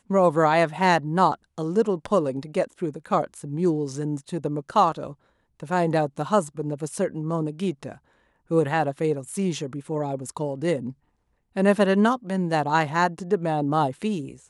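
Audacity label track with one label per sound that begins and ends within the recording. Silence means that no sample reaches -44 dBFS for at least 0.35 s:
5.600000	7.980000	sound
8.500000	10.920000	sound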